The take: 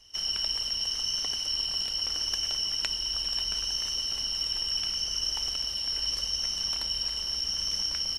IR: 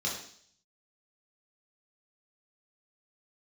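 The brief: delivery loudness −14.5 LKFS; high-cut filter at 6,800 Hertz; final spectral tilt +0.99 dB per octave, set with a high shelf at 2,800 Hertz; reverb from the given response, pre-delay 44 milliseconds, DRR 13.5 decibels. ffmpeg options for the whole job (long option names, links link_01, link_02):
-filter_complex "[0:a]lowpass=6800,highshelf=frequency=2800:gain=4.5,asplit=2[link_01][link_02];[1:a]atrim=start_sample=2205,adelay=44[link_03];[link_02][link_03]afir=irnorm=-1:irlink=0,volume=-19dB[link_04];[link_01][link_04]amix=inputs=2:normalize=0,volume=10.5dB"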